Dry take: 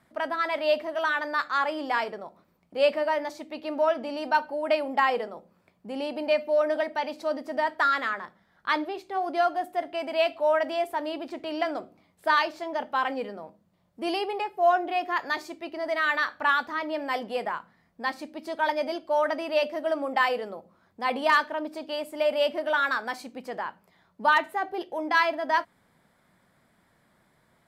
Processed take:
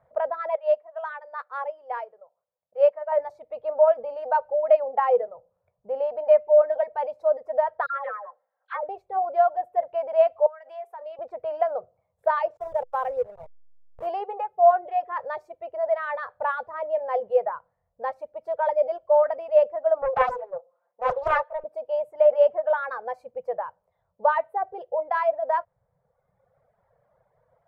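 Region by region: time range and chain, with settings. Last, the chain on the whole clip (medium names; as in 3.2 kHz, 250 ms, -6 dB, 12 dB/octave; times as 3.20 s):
0.55–3.12 s: high-pass 710 Hz 6 dB/octave + upward expansion, over -37 dBFS
7.86–8.89 s: band-pass 620–2900 Hz + comb 3.8 ms, depth 51% + phase dispersion lows, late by 81 ms, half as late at 1.3 kHz
10.46–11.19 s: high-pass 1.5 kHz 6 dB/octave + compression 10:1, threshold -34 dBFS
12.57–14.07 s: send-on-delta sampling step -32 dBFS + bass shelf 190 Hz -7 dB
20.02–21.64 s: band-pass 500–4600 Hz + comb 5.7 ms, depth 99% + loudspeaker Doppler distortion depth 0.69 ms
whole clip: reverb removal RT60 1.2 s; FFT filter 130 Hz 0 dB, 300 Hz -27 dB, 500 Hz +9 dB, 4.4 kHz -26 dB; trim +2 dB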